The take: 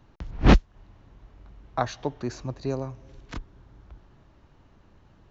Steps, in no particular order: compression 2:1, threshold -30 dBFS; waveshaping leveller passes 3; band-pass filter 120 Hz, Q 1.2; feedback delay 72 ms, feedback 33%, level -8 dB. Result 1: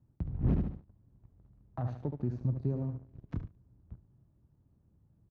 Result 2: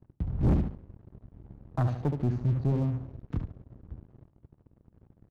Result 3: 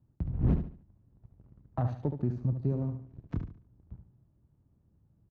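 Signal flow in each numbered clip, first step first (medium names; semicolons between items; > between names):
feedback delay > waveshaping leveller > compression > band-pass filter; band-pass filter > compression > feedback delay > waveshaping leveller; waveshaping leveller > band-pass filter > compression > feedback delay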